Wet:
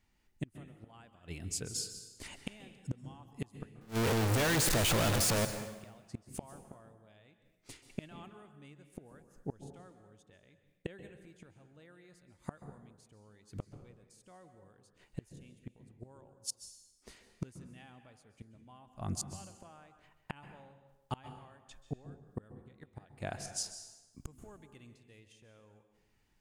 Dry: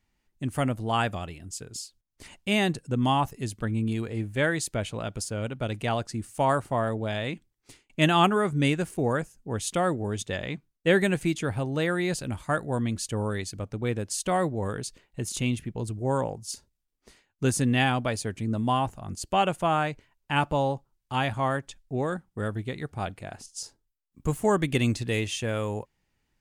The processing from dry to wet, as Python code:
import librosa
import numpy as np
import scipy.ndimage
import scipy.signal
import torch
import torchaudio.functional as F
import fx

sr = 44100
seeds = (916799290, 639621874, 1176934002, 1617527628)

y = fx.clip_1bit(x, sr, at=(3.81, 5.45))
y = fx.gate_flip(y, sr, shuts_db=-24.0, range_db=-32)
y = fx.rev_plate(y, sr, seeds[0], rt60_s=1.1, hf_ratio=0.8, predelay_ms=120, drr_db=9.0)